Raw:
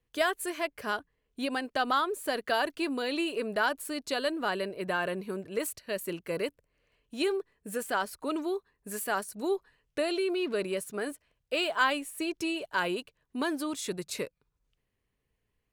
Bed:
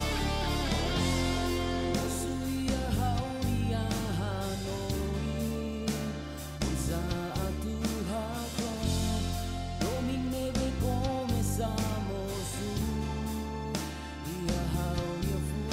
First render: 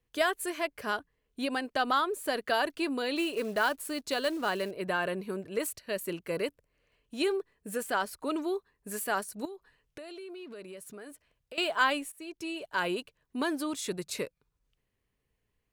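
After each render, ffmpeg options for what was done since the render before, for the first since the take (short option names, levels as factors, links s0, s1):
-filter_complex "[0:a]asettb=1/sr,asplit=3[s0][s1][s2];[s0]atrim=end=3.164[s3];[s1]atrim=start=3.16:end=4.71,asetpts=PTS-STARTPTS,afade=t=in:d=0.004:c=qsin,afade=t=out:st=1.546:d=0.004:c=qsin,acrusher=bits=5:mode=log:mix=0:aa=0.000001[s4];[s2]atrim=start=4.706[s5];[s3][s4]acrossfade=d=0.004:c1=hsin:c2=qsin[s6];[s6][s5]acrossfade=d=0.004:c1=qsin:c2=hsin,asettb=1/sr,asplit=3[s7][s8][s9];[s7]atrim=end=9.454[s10];[s8]atrim=start=9.45:end=11.58,asetpts=PTS-STARTPTS,afade=t=in:d=0.004:c=qsin,afade=t=out:st=2.126:d=0.004:c=qsin,acompressor=threshold=0.00708:ratio=5:attack=3.2:release=140:knee=1:detection=peak[s11];[s9]atrim=start=11.576[s12];[s10][s11]acrossfade=d=0.004:c1=hsin:c2=qsin[s13];[s13][s12]acrossfade=d=0.004:c1=qsin:c2=hsin,asplit=2[s14][s15];[s14]atrim=end=12.12,asetpts=PTS-STARTPTS,afade=t=out:st=12.116:d=0.004:c=hsin:silence=0.158489[s16];[s15]atrim=start=12.12,asetpts=PTS-STARTPTS,afade=t=in:d=0.79:silence=0.158489[s17];[s16][s17]concat=n=2:v=0:a=1"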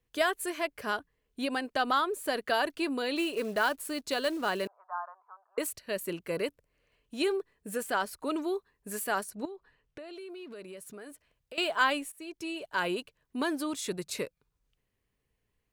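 -filter_complex "[0:a]asettb=1/sr,asplit=3[s0][s1][s2];[s0]atrim=end=4.674[s3];[s1]atrim=start=4.67:end=5.58,asetpts=PTS-STARTPTS,afade=t=in:d=0.004:c=qsin,afade=t=out:st=0.906:d=0.004:c=qsin,asuperpass=centerf=1000:order=8:qfactor=1.7[s4];[s2]atrim=start=5.576[s5];[s3][s4]acrossfade=d=0.004:c1=hsin:c2=qsin[s6];[s6][s5]acrossfade=d=0.004:c1=qsin:c2=hsin,asettb=1/sr,asplit=3[s7][s8][s9];[s7]atrim=end=9.304[s10];[s8]atrim=start=9.3:end=10.13,asetpts=PTS-STARTPTS,afade=t=in:d=0.004:c=qsin,afade=t=out:st=0.826:d=0.004:c=qsin,aemphasis=mode=reproduction:type=50fm[s11];[s9]atrim=start=10.126[s12];[s10][s11]acrossfade=d=0.004:c1=hsin:c2=qsin[s13];[s13][s12]acrossfade=d=0.004:c1=qsin:c2=hsin"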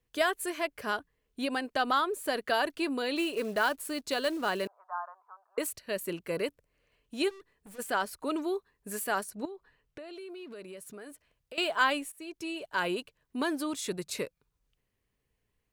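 -filter_complex "[0:a]asplit=3[s0][s1][s2];[s0]afade=t=out:st=7.28:d=0.02[s3];[s1]aeval=exprs='(tanh(282*val(0)+0.2)-tanh(0.2))/282':c=same,afade=t=in:st=7.28:d=0.02,afade=t=out:st=7.78:d=0.02[s4];[s2]afade=t=in:st=7.78:d=0.02[s5];[s3][s4][s5]amix=inputs=3:normalize=0"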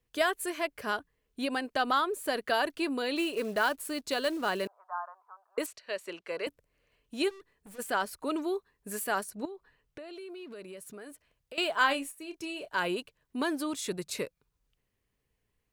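-filter_complex "[0:a]asettb=1/sr,asplit=3[s0][s1][s2];[s0]atrim=end=5.664[s3];[s1]atrim=start=5.66:end=6.47,asetpts=PTS-STARTPTS,afade=t=in:d=0.004:c=qsin,afade=t=out:st=0.806:d=0.004:c=qsin,acrossover=split=410 7400:gain=0.126 1 0.0708[s4][s5][s6];[s4][s5][s6]amix=inputs=3:normalize=0[s7];[s2]atrim=start=6.466[s8];[s3][s7]acrossfade=d=0.004:c1=hsin:c2=qsin[s9];[s9][s8]acrossfade=d=0.004:c1=qsin:c2=hsin,asettb=1/sr,asplit=3[s10][s11][s12];[s10]atrim=end=11.804[s13];[s11]atrim=start=11.8:end=12.71,asetpts=PTS-STARTPTS,afade=t=in:d=0.004:c=qsin,afade=t=out:st=0.906:d=0.004:c=qsin,asplit=2[s14][s15];[s15]adelay=29,volume=0.316[s16];[s14][s16]amix=inputs=2:normalize=0,atrim=end_sample=40131[s17];[s12]atrim=start=12.706[s18];[s13][s17]acrossfade=d=0.004:c1=hsin:c2=qsin[s19];[s19][s18]acrossfade=d=0.004:c1=qsin:c2=hsin"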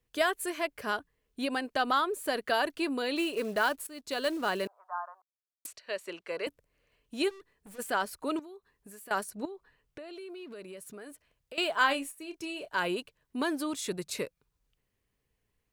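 -filter_complex "[0:a]asettb=1/sr,asplit=3[s0][s1][s2];[s0]atrim=end=8.394[s3];[s1]atrim=start=8.39:end=9.11,asetpts=PTS-STARTPTS,afade=t=in:d=0.004:c=qsin,afade=t=out:st=0.716:d=0.004:c=qsin,acompressor=threshold=0.00447:ratio=6:attack=3.2:release=140:knee=1:detection=peak[s4];[s2]atrim=start=9.106[s5];[s3][s4]acrossfade=d=0.004:c1=hsin:c2=qsin[s6];[s6][s5]acrossfade=d=0.004:c1=qsin:c2=hsin,asplit=4[s7][s8][s9][s10];[s7]atrim=end=3.87,asetpts=PTS-STARTPTS,afade=t=out:st=3.866:d=0.004:c=hsin:silence=0.149624[s11];[s8]atrim=start=3.87:end=5.22,asetpts=PTS-STARTPTS,afade=t=in:d=0.4:silence=0.149624,afade=t=out:st=1.346:d=0.004:c=hsin[s12];[s9]atrim=start=5.22:end=5.65,asetpts=PTS-STARTPTS,volume=0[s13];[s10]atrim=start=5.65,asetpts=PTS-STARTPTS,afade=t=in:d=0.004:c=hsin[s14];[s11][s12][s13][s14]concat=n=4:v=0:a=1"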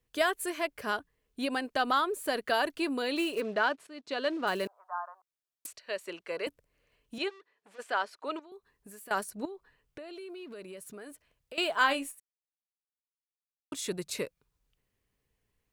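-filter_complex "[0:a]asplit=3[s0][s1][s2];[s0]afade=t=out:st=3.4:d=0.02[s3];[s1]highpass=170,lowpass=4000,afade=t=in:st=3.4:d=0.02,afade=t=out:st=4.46:d=0.02[s4];[s2]afade=t=in:st=4.46:d=0.02[s5];[s3][s4][s5]amix=inputs=3:normalize=0,asettb=1/sr,asplit=3[s6][s7][s8];[s6]atrim=end=7.184[s9];[s7]atrim=start=7.18:end=8.52,asetpts=PTS-STARTPTS,afade=t=in:d=0.004:c=qsin,afade=t=out:st=1.336:d=0.004:c=qsin,highpass=480,lowpass=4500[s10];[s8]atrim=start=8.516[s11];[s9][s10]acrossfade=d=0.004:c1=hsin:c2=qsin[s12];[s12][s11]acrossfade=d=0.004:c1=qsin:c2=hsin,asplit=3[s13][s14][s15];[s13]atrim=end=12.2,asetpts=PTS-STARTPTS,afade=t=out:st=12.196:d=0.004:c=hsin[s16];[s14]atrim=start=12.2:end=13.72,asetpts=PTS-STARTPTS,volume=0[s17];[s15]atrim=start=13.72,asetpts=PTS-STARTPTS,afade=t=in:d=0.004:c=hsin[s18];[s16][s17][s18]concat=n=3:v=0:a=1"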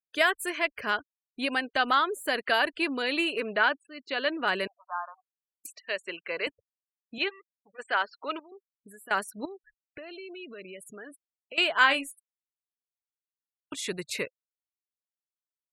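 -af "afftfilt=real='re*gte(hypot(re,im),0.00398)':imag='im*gte(hypot(re,im),0.00398)':win_size=1024:overlap=0.75,equalizer=f=2200:w=1:g=9"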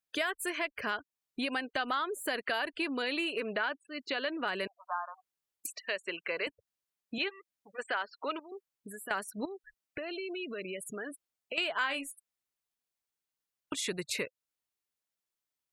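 -filter_complex "[0:a]asplit=2[s0][s1];[s1]alimiter=limit=0.1:level=0:latency=1:release=33,volume=0.794[s2];[s0][s2]amix=inputs=2:normalize=0,acompressor=threshold=0.0178:ratio=2.5"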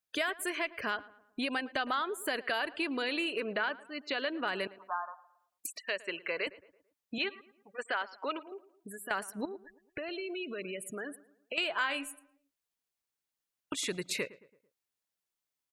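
-filter_complex "[0:a]asplit=2[s0][s1];[s1]adelay=111,lowpass=f=1900:p=1,volume=0.126,asplit=2[s2][s3];[s3]adelay=111,lowpass=f=1900:p=1,volume=0.47,asplit=2[s4][s5];[s5]adelay=111,lowpass=f=1900:p=1,volume=0.47,asplit=2[s6][s7];[s7]adelay=111,lowpass=f=1900:p=1,volume=0.47[s8];[s0][s2][s4][s6][s8]amix=inputs=5:normalize=0"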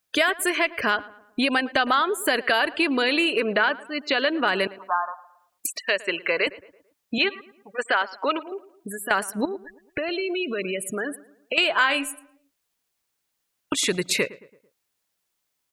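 -af "volume=3.76"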